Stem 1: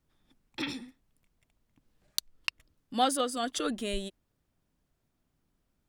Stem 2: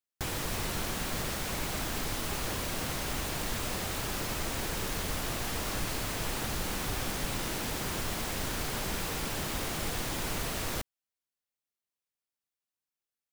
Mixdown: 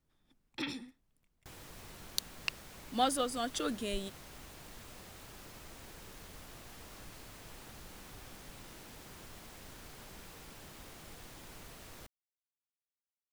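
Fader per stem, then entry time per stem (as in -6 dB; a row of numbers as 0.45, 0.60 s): -3.5, -17.5 dB; 0.00, 1.25 s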